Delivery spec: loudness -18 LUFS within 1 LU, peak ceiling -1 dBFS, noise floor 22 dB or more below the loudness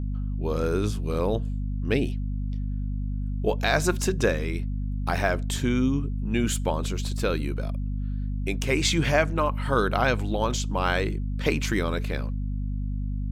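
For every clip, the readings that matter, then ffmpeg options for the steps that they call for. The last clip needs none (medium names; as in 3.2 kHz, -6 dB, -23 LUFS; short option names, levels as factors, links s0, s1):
hum 50 Hz; highest harmonic 250 Hz; hum level -26 dBFS; loudness -27.0 LUFS; peak level -7.5 dBFS; loudness target -18.0 LUFS
-> -af "bandreject=f=50:t=h:w=4,bandreject=f=100:t=h:w=4,bandreject=f=150:t=h:w=4,bandreject=f=200:t=h:w=4,bandreject=f=250:t=h:w=4"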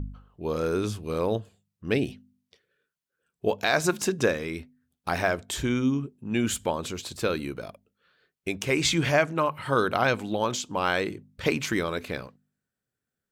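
hum not found; loudness -27.5 LUFS; peak level -9.0 dBFS; loudness target -18.0 LUFS
-> -af "volume=2.99,alimiter=limit=0.891:level=0:latency=1"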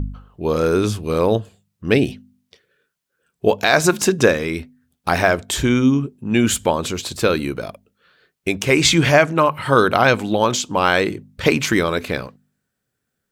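loudness -18.0 LUFS; peak level -1.0 dBFS; noise floor -77 dBFS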